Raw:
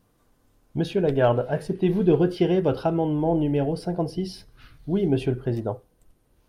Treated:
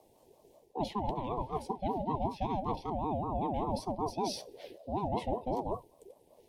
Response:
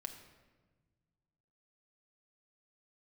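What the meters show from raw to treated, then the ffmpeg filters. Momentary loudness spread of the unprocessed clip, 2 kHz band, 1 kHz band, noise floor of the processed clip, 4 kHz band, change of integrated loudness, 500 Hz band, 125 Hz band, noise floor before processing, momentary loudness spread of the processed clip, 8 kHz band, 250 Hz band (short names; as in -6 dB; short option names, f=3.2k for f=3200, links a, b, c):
12 LU, -18.0 dB, -0.5 dB, -65 dBFS, -6.5 dB, -11.5 dB, -13.5 dB, -14.0 dB, -65 dBFS, 6 LU, n/a, -14.0 dB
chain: -af "areverse,acompressor=threshold=-31dB:ratio=10,areverse,asuperstop=centerf=1100:order=8:qfactor=0.63,aeval=exprs='val(0)*sin(2*PI*500*n/s+500*0.25/5.2*sin(2*PI*5.2*n/s))':c=same,volume=4dB"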